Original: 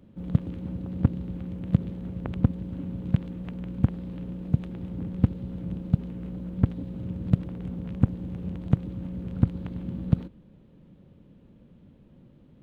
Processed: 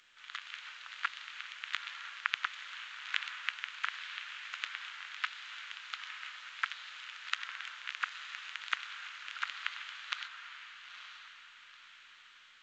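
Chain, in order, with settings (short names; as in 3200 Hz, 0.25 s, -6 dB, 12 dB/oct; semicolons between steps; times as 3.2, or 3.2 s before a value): steep high-pass 1400 Hz 36 dB/oct; AGC gain up to 5 dB; on a send: diffused feedback echo 0.927 s, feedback 41%, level -9 dB; on the sum: gain +13 dB; A-law 128 kbps 16000 Hz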